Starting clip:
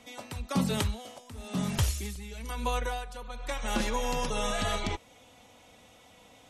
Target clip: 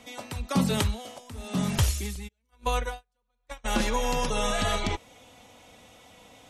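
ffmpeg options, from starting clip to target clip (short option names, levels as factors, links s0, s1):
-filter_complex "[0:a]asplit=3[s0][s1][s2];[s0]afade=t=out:st=2.27:d=0.02[s3];[s1]agate=range=0.00891:threshold=0.0316:ratio=16:detection=peak,afade=t=in:st=2.27:d=0.02,afade=t=out:st=3.64:d=0.02[s4];[s2]afade=t=in:st=3.64:d=0.02[s5];[s3][s4][s5]amix=inputs=3:normalize=0,volume=1.5"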